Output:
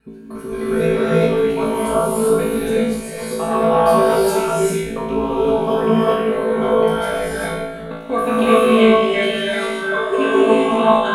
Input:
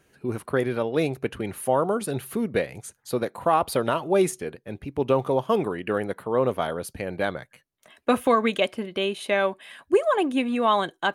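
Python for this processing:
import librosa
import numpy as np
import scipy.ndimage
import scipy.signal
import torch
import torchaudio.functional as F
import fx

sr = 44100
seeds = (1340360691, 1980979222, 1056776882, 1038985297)

p1 = fx.block_reorder(x, sr, ms=87.0, group=3)
p2 = fx.low_shelf(p1, sr, hz=120.0, db=9.0)
p3 = p2 + 0.98 * np.pad(p2, (int(4.5 * sr / 1000.0), 0))[:len(p2)]
p4 = p3 + fx.room_flutter(p3, sr, wall_m=3.1, rt60_s=0.72, dry=0)
p5 = fx.rev_gated(p4, sr, seeds[0], gate_ms=420, shape='rising', drr_db=-6.5)
y = p5 * 10.0 ** (-8.0 / 20.0)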